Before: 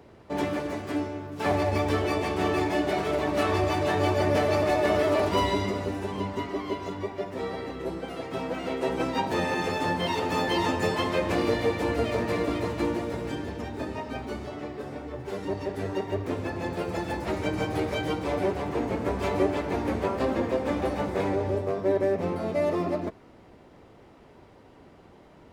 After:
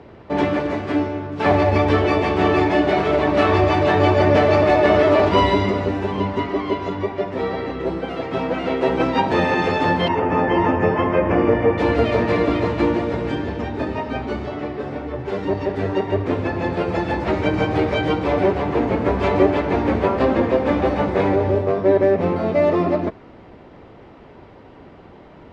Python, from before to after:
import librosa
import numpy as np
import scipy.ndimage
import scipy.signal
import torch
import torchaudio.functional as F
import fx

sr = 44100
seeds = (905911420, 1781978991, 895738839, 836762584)

y = fx.moving_average(x, sr, points=11, at=(10.08, 11.78))
y = scipy.signal.sosfilt(scipy.signal.butter(2, 3600.0, 'lowpass', fs=sr, output='sos'), y)
y = F.gain(torch.from_numpy(y), 9.0).numpy()